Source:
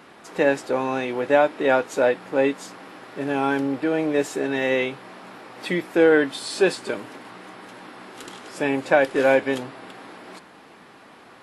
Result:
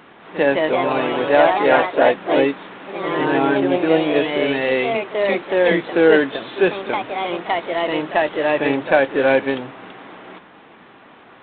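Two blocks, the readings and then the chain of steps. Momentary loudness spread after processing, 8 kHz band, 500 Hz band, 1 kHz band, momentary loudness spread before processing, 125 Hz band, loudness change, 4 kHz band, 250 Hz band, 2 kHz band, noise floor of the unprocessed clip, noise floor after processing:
10 LU, below −40 dB, +5.0 dB, +7.0 dB, 22 LU, +4.5 dB, +4.0 dB, +6.5 dB, +4.5 dB, +5.0 dB, −48 dBFS, −46 dBFS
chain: echo ahead of the sound 44 ms −15 dB
delay with pitch and tempo change per echo 208 ms, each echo +2 semitones, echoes 3
level +2.5 dB
G.726 32 kbit/s 8,000 Hz

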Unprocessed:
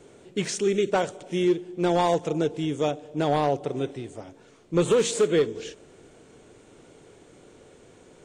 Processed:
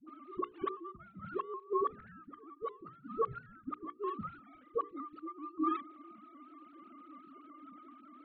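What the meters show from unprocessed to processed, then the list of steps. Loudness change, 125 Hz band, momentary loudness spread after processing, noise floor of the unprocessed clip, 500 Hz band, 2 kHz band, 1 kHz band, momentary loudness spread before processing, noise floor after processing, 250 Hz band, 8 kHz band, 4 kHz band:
−14.5 dB, −23.0 dB, 20 LU, −54 dBFS, −16.5 dB, −19.0 dB, −8.5 dB, 11 LU, −60 dBFS, −14.5 dB, below −40 dB, below −25 dB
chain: three sine waves on the formant tracks
ring modulation 760 Hz
gate with flip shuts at −26 dBFS, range −31 dB
low-pass filter 2,300 Hz 12 dB per octave
parametric band 940 Hz −8 dB 0.23 octaves
mains-hum notches 60/120/180/240/300/360/420/480 Hz
all-pass dispersion highs, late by 75 ms, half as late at 470 Hz
pitch modulation by a square or saw wave saw up 5.2 Hz, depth 100 cents
level +9 dB

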